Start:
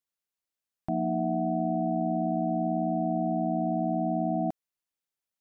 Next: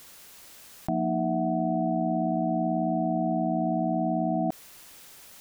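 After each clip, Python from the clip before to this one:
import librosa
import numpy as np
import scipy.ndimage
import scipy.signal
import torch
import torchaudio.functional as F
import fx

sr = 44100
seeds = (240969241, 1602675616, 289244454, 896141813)

y = fx.env_flatten(x, sr, amount_pct=100)
y = y * 10.0 ** (1.0 / 20.0)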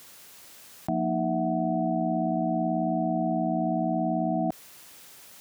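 y = scipy.signal.sosfilt(scipy.signal.butter(2, 75.0, 'highpass', fs=sr, output='sos'), x)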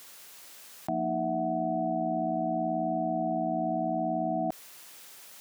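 y = fx.low_shelf(x, sr, hz=260.0, db=-9.5)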